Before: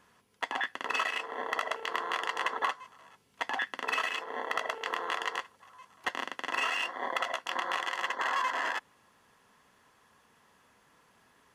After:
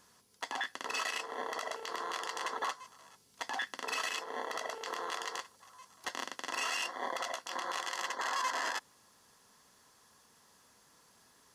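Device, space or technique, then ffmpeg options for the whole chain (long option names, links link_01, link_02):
over-bright horn tweeter: -af "highshelf=frequency=3600:width_type=q:width=1.5:gain=8.5,alimiter=limit=-22dB:level=0:latency=1:release=22,volume=-2dB"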